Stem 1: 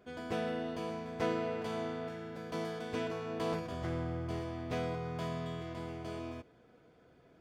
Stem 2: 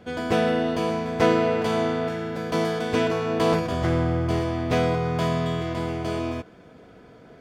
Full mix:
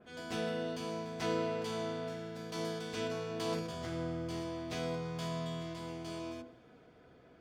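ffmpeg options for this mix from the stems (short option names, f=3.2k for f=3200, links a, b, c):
-filter_complex "[0:a]lowpass=4.8k,bandreject=f=50:t=h:w=6,bandreject=f=100:t=h:w=6,bandreject=f=150:t=h:w=6,bandreject=f=200:t=h:w=6,bandreject=f=250:t=h:w=6,bandreject=f=300:t=h:w=6,bandreject=f=350:t=h:w=6,bandreject=f=400:t=h:w=6,bandreject=f=450:t=h:w=6,bandreject=f=500:t=h:w=6,volume=2dB[a];[1:a]bandreject=f=55.05:t=h:w=4,bandreject=f=110.1:t=h:w=4,bandreject=f=165.15:t=h:w=4,bandreject=f=220.2:t=h:w=4,bandreject=f=275.25:t=h:w=4,bandreject=f=330.3:t=h:w=4,bandreject=f=385.35:t=h:w=4,bandreject=f=440.4:t=h:w=4,bandreject=f=495.45:t=h:w=4,bandreject=f=550.5:t=h:w=4,bandreject=f=605.55:t=h:w=4,bandreject=f=660.6:t=h:w=4,bandreject=f=715.65:t=h:w=4,bandreject=f=770.7:t=h:w=4,bandreject=f=825.75:t=h:w=4,bandreject=f=880.8:t=h:w=4,bandreject=f=935.85:t=h:w=4,bandreject=f=990.9:t=h:w=4,bandreject=f=1.04595k:t=h:w=4,bandreject=f=1.101k:t=h:w=4,bandreject=f=1.15605k:t=h:w=4,bandreject=f=1.2111k:t=h:w=4,bandreject=f=1.26615k:t=h:w=4,bandreject=f=1.3212k:t=h:w=4,bandreject=f=1.37625k:t=h:w=4,bandreject=f=1.4313k:t=h:w=4,bandreject=f=1.48635k:t=h:w=4,bandreject=f=1.5414k:t=h:w=4,bandreject=f=1.59645k:t=h:w=4,volume=-1,volume=-16dB[b];[a][b]amix=inputs=2:normalize=0,adynamicequalizer=threshold=0.00126:dfrequency=3000:dqfactor=0.7:tfrequency=3000:tqfactor=0.7:attack=5:release=100:ratio=0.375:range=3:mode=boostabove:tftype=highshelf"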